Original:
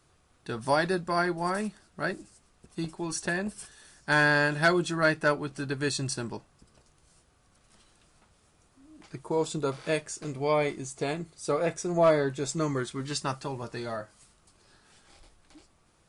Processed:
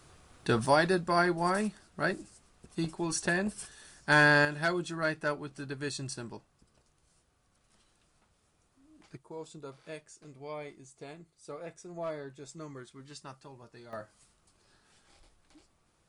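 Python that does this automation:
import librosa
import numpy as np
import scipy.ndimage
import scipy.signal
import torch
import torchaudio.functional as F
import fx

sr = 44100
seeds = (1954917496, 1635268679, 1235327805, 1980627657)

y = fx.gain(x, sr, db=fx.steps((0.0, 7.5), (0.66, 0.5), (4.45, -7.0), (9.17, -15.5), (13.93, -5.5)))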